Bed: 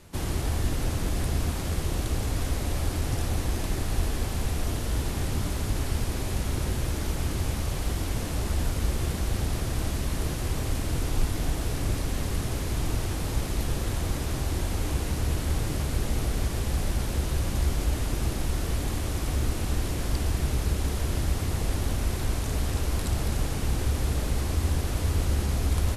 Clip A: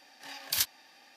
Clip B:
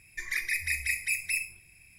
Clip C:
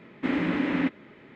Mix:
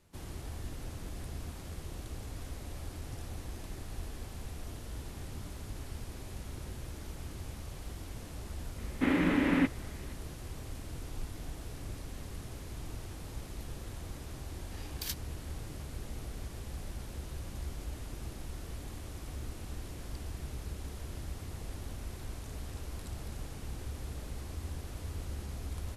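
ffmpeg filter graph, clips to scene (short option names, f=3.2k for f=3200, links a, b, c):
-filter_complex "[0:a]volume=-14.5dB[a];[3:a]atrim=end=1.35,asetpts=PTS-STARTPTS,volume=-1.5dB,afade=t=in:d=0.004:c=hsin,afade=t=out:st=1.346:d=0.004:c=hsin,adelay=8780[b];[1:a]atrim=end=1.16,asetpts=PTS-STARTPTS,volume=-10.5dB,afade=t=in:d=0.004:c=hsin,afade=t=out:st=1.156:d=0.004:c=hsin,adelay=14490[c];[a][b][c]amix=inputs=3:normalize=0"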